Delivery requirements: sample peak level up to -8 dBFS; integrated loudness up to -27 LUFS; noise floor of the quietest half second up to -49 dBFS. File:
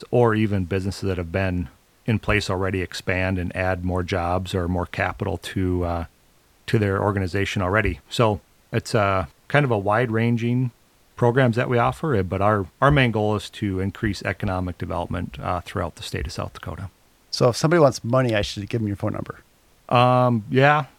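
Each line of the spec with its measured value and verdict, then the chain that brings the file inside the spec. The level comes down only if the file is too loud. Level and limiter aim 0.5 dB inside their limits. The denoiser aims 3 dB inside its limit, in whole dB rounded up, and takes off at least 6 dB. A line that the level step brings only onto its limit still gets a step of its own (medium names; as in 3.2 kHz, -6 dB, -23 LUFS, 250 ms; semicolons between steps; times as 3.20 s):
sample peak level -2.0 dBFS: fail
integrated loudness -22.5 LUFS: fail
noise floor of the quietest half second -58 dBFS: pass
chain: trim -5 dB; peak limiter -8.5 dBFS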